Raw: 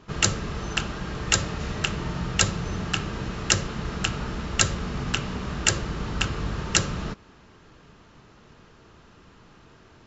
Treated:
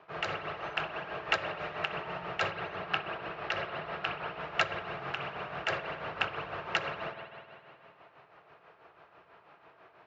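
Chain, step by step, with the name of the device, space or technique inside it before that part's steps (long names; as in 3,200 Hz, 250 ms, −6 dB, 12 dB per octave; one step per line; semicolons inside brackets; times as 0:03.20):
0:02.52–0:04.40: low-pass filter 5,800 Hz 24 dB per octave
combo amplifier with spring reverb and tremolo (spring reverb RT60 2.5 s, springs 51 ms, chirp 35 ms, DRR 6.5 dB; amplitude tremolo 6.1 Hz, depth 56%; loudspeaker in its box 88–4,600 Hz, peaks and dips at 160 Hz +6 dB, 230 Hz −9 dB, 680 Hz +7 dB, 2,400 Hz +5 dB)
three-way crossover with the lows and the highs turned down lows −18 dB, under 430 Hz, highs −13 dB, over 2,200 Hz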